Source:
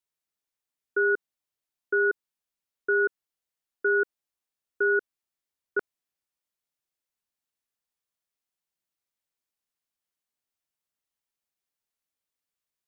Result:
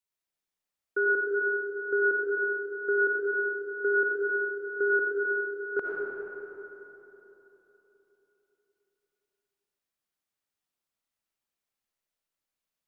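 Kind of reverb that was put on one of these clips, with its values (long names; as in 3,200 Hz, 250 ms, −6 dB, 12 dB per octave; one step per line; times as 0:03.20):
comb and all-pass reverb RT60 3.7 s, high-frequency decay 0.5×, pre-delay 35 ms, DRR −3 dB
level −3 dB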